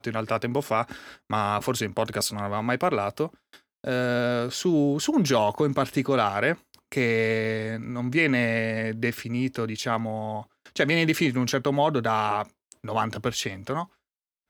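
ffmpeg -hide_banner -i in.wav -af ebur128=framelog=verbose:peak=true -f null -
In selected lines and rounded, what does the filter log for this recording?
Integrated loudness:
  I:         -25.8 LUFS
  Threshold: -36.1 LUFS
Loudness range:
  LRA:         3.0 LU
  Threshold: -45.7 LUFS
  LRA low:   -27.3 LUFS
  LRA high:  -24.4 LUFS
True peak:
  Peak:       -8.0 dBFS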